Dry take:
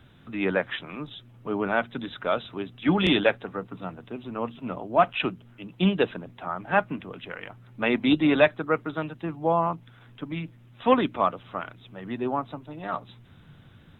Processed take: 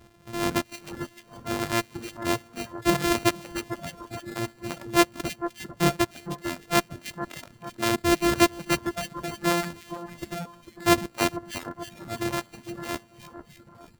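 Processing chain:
samples sorted by size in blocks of 128 samples
echo with a time of its own for lows and highs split 1,700 Hz, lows 449 ms, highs 307 ms, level −9.5 dB
reverb reduction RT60 1.3 s

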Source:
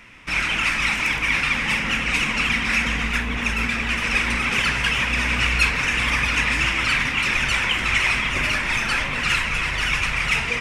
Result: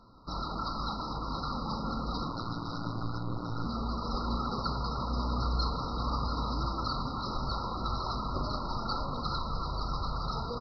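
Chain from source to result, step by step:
downsampling to 11,025 Hz
linear-phase brick-wall band-stop 1,400–3,800 Hz
0:02.28–0:03.66: ring modulation 58 Hz
level −5 dB

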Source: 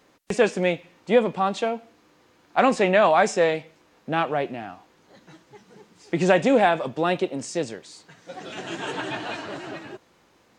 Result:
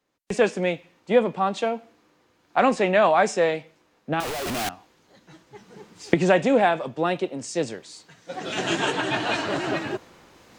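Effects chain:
0:04.20–0:04.69: sign of each sample alone
camcorder AGC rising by 8 dB per second
multiband upward and downward expander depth 40%
level −2 dB

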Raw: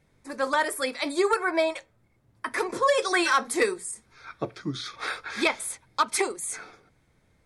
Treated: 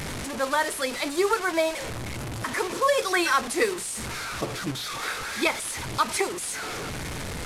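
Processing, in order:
linear delta modulator 64 kbit/s, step −27 dBFS

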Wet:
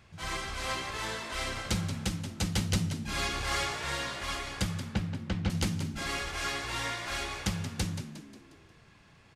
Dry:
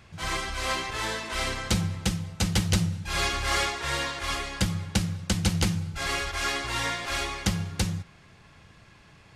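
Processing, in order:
0:04.85–0:05.50: low-pass filter 2,600 Hz 12 dB per octave
echo with shifted repeats 179 ms, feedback 46%, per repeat +57 Hz, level −10 dB
level −5.5 dB

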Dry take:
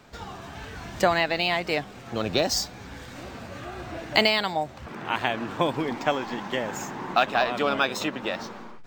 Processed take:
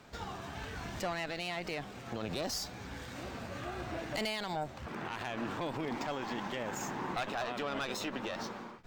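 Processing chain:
tube saturation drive 19 dB, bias 0.65
brickwall limiter −26.5 dBFS, peak gain reduction 11 dB

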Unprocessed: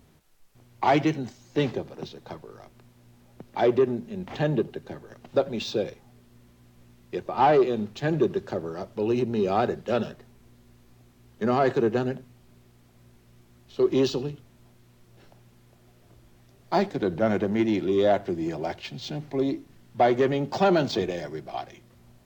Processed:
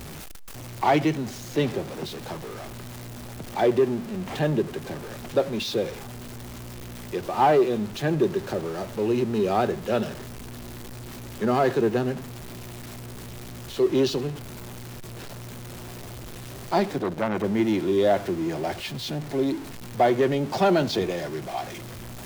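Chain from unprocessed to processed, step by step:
converter with a step at zero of −33.5 dBFS
0:16.98–0:17.44: saturating transformer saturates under 1,100 Hz

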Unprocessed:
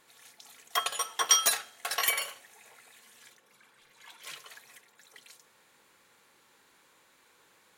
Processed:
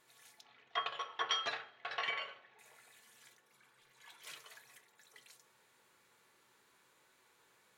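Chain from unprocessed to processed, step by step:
0:00.41–0:02.59: low-pass filter 3,500 Hz 24 dB per octave
convolution reverb RT60 0.55 s, pre-delay 4 ms, DRR 6 dB
level −7 dB

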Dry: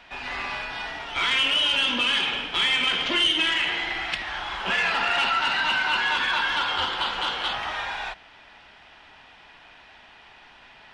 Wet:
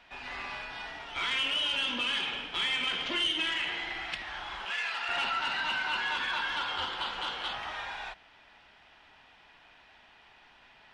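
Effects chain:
0:04.65–0:05.09: high-pass filter 1,400 Hz 6 dB per octave
level −8 dB

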